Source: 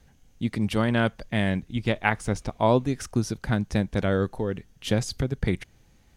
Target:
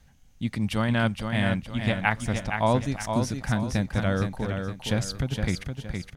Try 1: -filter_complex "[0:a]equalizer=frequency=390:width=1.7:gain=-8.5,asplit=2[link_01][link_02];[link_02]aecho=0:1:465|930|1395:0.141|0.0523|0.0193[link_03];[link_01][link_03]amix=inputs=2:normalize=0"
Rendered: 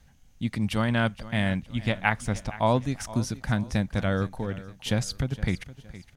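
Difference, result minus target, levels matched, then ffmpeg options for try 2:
echo-to-direct −11 dB
-filter_complex "[0:a]equalizer=frequency=390:width=1.7:gain=-8.5,asplit=2[link_01][link_02];[link_02]aecho=0:1:465|930|1395|1860:0.501|0.185|0.0686|0.0254[link_03];[link_01][link_03]amix=inputs=2:normalize=0"

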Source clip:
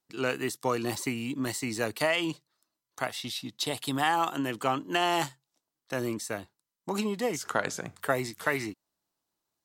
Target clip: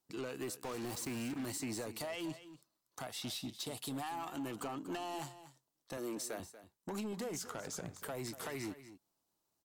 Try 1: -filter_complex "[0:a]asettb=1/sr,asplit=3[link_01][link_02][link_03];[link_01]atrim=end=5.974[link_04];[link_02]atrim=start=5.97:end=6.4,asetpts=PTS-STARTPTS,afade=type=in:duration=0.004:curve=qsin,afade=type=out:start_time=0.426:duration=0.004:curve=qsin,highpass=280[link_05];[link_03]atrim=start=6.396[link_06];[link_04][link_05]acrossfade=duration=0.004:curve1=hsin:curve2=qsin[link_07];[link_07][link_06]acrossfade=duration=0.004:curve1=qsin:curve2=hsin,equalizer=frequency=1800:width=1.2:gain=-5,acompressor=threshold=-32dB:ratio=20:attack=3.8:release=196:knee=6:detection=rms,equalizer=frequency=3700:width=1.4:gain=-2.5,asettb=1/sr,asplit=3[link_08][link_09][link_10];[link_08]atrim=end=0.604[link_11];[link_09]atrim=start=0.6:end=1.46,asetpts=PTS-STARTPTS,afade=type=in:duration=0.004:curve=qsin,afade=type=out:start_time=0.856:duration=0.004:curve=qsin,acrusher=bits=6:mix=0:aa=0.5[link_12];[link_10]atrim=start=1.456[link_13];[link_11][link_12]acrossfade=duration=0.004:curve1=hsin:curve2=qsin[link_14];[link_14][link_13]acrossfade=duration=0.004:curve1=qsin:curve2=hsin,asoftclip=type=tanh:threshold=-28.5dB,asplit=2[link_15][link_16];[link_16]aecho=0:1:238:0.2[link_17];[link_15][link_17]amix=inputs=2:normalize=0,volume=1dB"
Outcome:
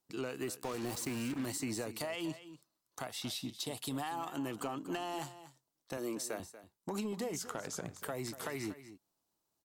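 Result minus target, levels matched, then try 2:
soft clipping: distortion −10 dB
-filter_complex "[0:a]asettb=1/sr,asplit=3[link_01][link_02][link_03];[link_01]atrim=end=5.974[link_04];[link_02]atrim=start=5.97:end=6.4,asetpts=PTS-STARTPTS,afade=type=in:duration=0.004:curve=qsin,afade=type=out:start_time=0.426:duration=0.004:curve=qsin,highpass=280[link_05];[link_03]atrim=start=6.396[link_06];[link_04][link_05]acrossfade=duration=0.004:curve1=hsin:curve2=qsin[link_07];[link_07][link_06]acrossfade=duration=0.004:curve1=qsin:curve2=hsin,equalizer=frequency=1800:width=1.2:gain=-5,acompressor=threshold=-32dB:ratio=20:attack=3.8:release=196:knee=6:detection=rms,equalizer=frequency=3700:width=1.4:gain=-2.5,asettb=1/sr,asplit=3[link_08][link_09][link_10];[link_08]atrim=end=0.604[link_11];[link_09]atrim=start=0.6:end=1.46,asetpts=PTS-STARTPTS,afade=type=in:duration=0.004:curve=qsin,afade=type=out:start_time=0.856:duration=0.004:curve=qsin,acrusher=bits=6:mix=0:aa=0.5[link_12];[link_10]atrim=start=1.456[link_13];[link_11][link_12]acrossfade=duration=0.004:curve1=hsin:curve2=qsin[link_14];[link_14][link_13]acrossfade=duration=0.004:curve1=qsin:curve2=hsin,asoftclip=type=tanh:threshold=-36.5dB,asplit=2[link_15][link_16];[link_16]aecho=0:1:238:0.2[link_17];[link_15][link_17]amix=inputs=2:normalize=0,volume=1dB"

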